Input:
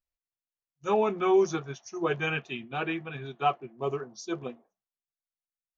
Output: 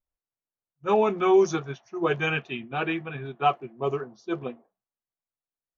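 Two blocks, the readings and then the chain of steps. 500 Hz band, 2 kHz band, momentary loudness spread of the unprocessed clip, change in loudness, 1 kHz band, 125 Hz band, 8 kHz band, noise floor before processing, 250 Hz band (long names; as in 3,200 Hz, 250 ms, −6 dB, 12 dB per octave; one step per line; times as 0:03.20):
+3.5 dB, +3.5 dB, 13 LU, +3.5 dB, +3.5 dB, +3.5 dB, can't be measured, below −85 dBFS, +3.5 dB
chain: low-pass that shuts in the quiet parts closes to 1,200 Hz, open at −23.5 dBFS
level +3.5 dB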